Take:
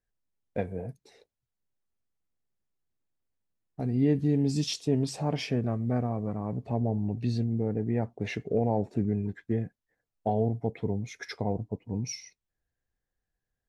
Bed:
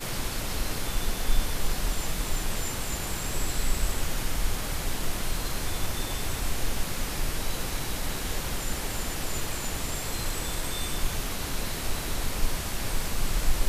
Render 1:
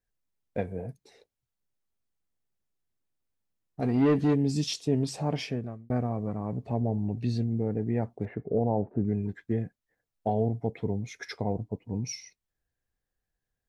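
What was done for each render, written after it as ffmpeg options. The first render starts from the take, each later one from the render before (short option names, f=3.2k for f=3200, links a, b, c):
-filter_complex "[0:a]asplit=3[a][b][c];[a]afade=t=out:st=3.81:d=0.02[d];[b]asplit=2[e][f];[f]highpass=f=720:p=1,volume=20dB,asoftclip=type=tanh:threshold=-14.5dB[g];[e][g]amix=inputs=2:normalize=0,lowpass=f=3.2k:p=1,volume=-6dB,afade=t=in:st=3.81:d=0.02,afade=t=out:st=4.33:d=0.02[h];[c]afade=t=in:st=4.33:d=0.02[i];[d][h][i]amix=inputs=3:normalize=0,asettb=1/sr,asplit=3[j][k][l];[j]atrim=end=8.254[m];[k]atrim=start=8.25:end=9.05,asetpts=PTS-STARTPTS,afade=t=in:d=0.004:c=qsin,afade=t=out:st=0.796:d=0.004:c=qsin,lowpass=f=1.4k:w=0.5412,lowpass=f=1.4k:w=1.3066[n];[l]atrim=start=9.046[o];[m][n]acrossfade=d=0.004:c1=hsin:c2=qsin[p];[p][o]acrossfade=d=0.004:c1=qsin:c2=hsin,asplit=2[q][r];[q]atrim=end=5.9,asetpts=PTS-STARTPTS,afade=t=out:st=5.36:d=0.54[s];[r]atrim=start=5.9,asetpts=PTS-STARTPTS,afade=t=in:d=0.004:c=hsin[t];[s][t]concat=n=2:v=0:a=1"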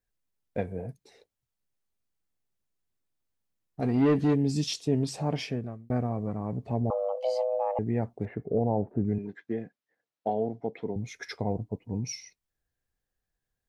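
-filter_complex "[0:a]asettb=1/sr,asplit=3[a][b][c];[a]atrim=end=6.904[d];[b]atrim=start=6.9:end=7.79,asetpts=PTS-STARTPTS,afade=t=in:d=0.004:c=qsin,afade=t=out:st=0.886:d=0.004:c=qsin,afreqshift=390[e];[c]atrim=start=7.786[f];[d][e]acrossfade=d=0.004:c1=hsin:c2=qsin[g];[g][f]acrossfade=d=0.004:c1=qsin:c2=hsin,asettb=1/sr,asplit=3[h][i][j];[h]atrim=end=9.184[k];[i]atrim=start=9.18:end=10.96,asetpts=PTS-STARTPTS,afade=t=in:d=0.004:c=qsin,afade=t=out:st=1.776:d=0.004:c=qsin,highpass=240,lowpass=5.2k[l];[j]atrim=start=10.956[m];[k][l]acrossfade=d=0.004:c1=hsin:c2=qsin[n];[n][m]acrossfade=d=0.004:c1=qsin:c2=hsin"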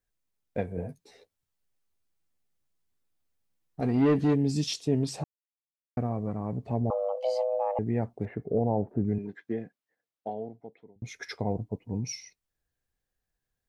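-filter_complex "[0:a]asettb=1/sr,asplit=3[a][b][c];[a]atrim=end=0.764[d];[b]atrim=start=0.76:end=3.81,asetpts=PTS-STARTPTS,afade=t=in:d=0.004:c=qsin,afade=t=out:st=3.046:d=0.004:c=qsin,asplit=2[e][f];[f]adelay=12,volume=-2.5dB[g];[e][g]amix=inputs=2:normalize=0,atrim=end_sample=134505[h];[c]atrim=start=3.806[i];[d][h]acrossfade=d=0.004:c1=hsin:c2=qsin[j];[j][i]acrossfade=d=0.004:c1=qsin:c2=hsin,asplit=4[k][l][m][n];[k]atrim=end=5.24,asetpts=PTS-STARTPTS,afade=t=out:st=5.236:d=0.004:c=hsin[o];[l]atrim=start=5.24:end=5.97,asetpts=PTS-STARTPTS,volume=0[p];[m]atrim=start=5.97:end=11.02,asetpts=PTS-STARTPTS,afade=t=in:d=0.004:c=hsin,afade=t=out:st=3.55:d=1.5[q];[n]atrim=start=11.02,asetpts=PTS-STARTPTS,afade=t=in:d=0.004:c=hsin[r];[o][p][q][r]concat=n=4:v=0:a=1"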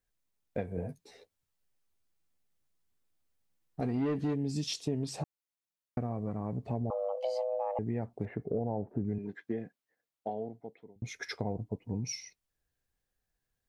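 -af "acompressor=threshold=-31dB:ratio=3"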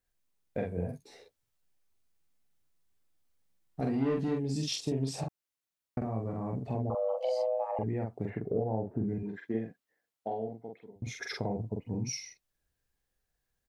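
-filter_complex "[0:a]asplit=2[a][b];[b]adelay=45,volume=-3dB[c];[a][c]amix=inputs=2:normalize=0"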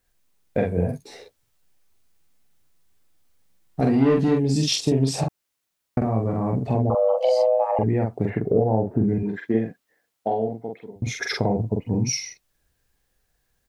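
-af "volume=11.5dB"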